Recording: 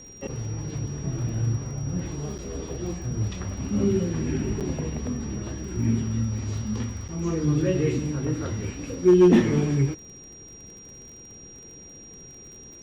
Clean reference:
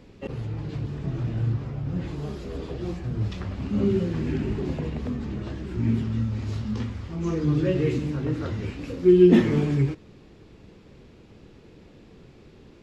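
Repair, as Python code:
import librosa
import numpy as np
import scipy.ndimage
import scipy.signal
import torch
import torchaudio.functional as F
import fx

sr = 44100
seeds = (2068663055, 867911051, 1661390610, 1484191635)

y = fx.fix_declip(x, sr, threshold_db=-10.0)
y = fx.fix_declick_ar(y, sr, threshold=6.5)
y = fx.notch(y, sr, hz=5700.0, q=30.0)
y = fx.fix_interpolate(y, sr, at_s=(2.38, 4.6, 7.08), length_ms=7.7)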